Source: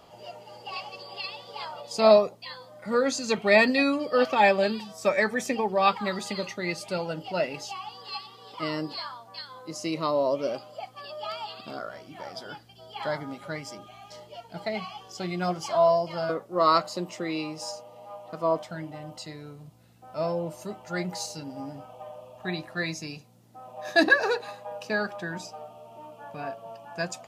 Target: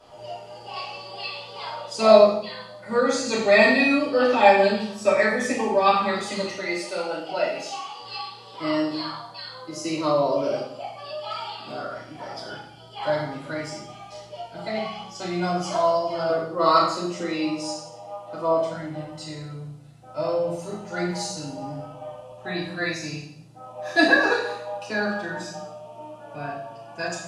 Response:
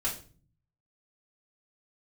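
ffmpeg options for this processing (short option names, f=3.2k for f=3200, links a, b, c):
-filter_complex "[0:a]asettb=1/sr,asplit=3[a][b][c];[a]atrim=end=6.564[d];[b]atrim=start=6.56:end=7.99,asetpts=PTS-STARTPTS,afade=t=in:d=0.004:c=qsin,afade=t=out:st=1.426:d=0.004:c=qsin,highpass=310[e];[c]atrim=start=7.986[f];[d][e]acrossfade=d=0.004:c1=hsin:c2=qsin[g];[g][f]acrossfade=d=0.004:c1=qsin:c2=hsin[h];[1:a]atrim=start_sample=2205,asetrate=22932,aresample=44100[i];[h][i]afir=irnorm=-1:irlink=0,volume=-6.5dB"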